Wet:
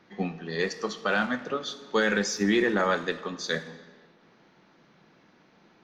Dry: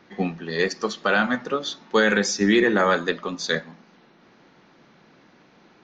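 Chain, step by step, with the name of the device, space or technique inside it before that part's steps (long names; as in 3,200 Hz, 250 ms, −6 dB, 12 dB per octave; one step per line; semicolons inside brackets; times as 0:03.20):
saturated reverb return (on a send at −9 dB: convolution reverb RT60 1.4 s, pre-delay 3 ms + soft clipping −23.5 dBFS, distortion −7 dB)
on the sum: level −5.5 dB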